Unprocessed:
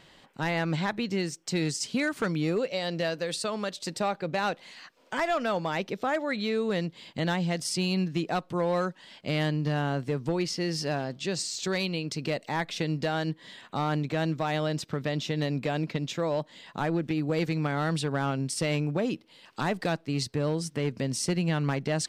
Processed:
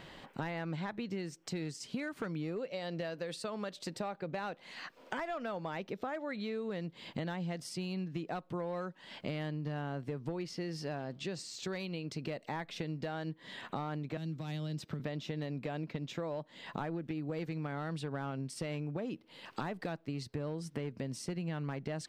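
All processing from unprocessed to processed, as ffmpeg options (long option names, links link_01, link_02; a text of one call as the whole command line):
ffmpeg -i in.wav -filter_complex "[0:a]asettb=1/sr,asplit=3[link_01][link_02][link_03];[link_01]atrim=end=14.174[link_04];[link_02]atrim=start=14.17:end=15,asetpts=PTS-STARTPTS,afade=type=in:duration=0.004:curve=qsin,afade=type=out:start_time=0.826:duration=0.004:curve=qsin,highpass=47,acrossover=split=270|3000[link_05][link_06][link_07];[link_06]acompressor=threshold=-45dB:ratio=5:attack=3.2:release=140:knee=2.83:detection=peak[link_08];[link_05][link_08][link_07]amix=inputs=3:normalize=0[link_09];[link_03]atrim=start=14.996[link_10];[link_04][link_09]acrossfade=duration=0.004:curve1=hsin:curve2=qsin[link_11];[link_11][link_10]acrossfade=duration=0.004:curve1=qsin:curve2=hsin,acompressor=threshold=-42dB:ratio=6,equalizer=frequency=7700:width=0.45:gain=-8,volume=5.5dB" out.wav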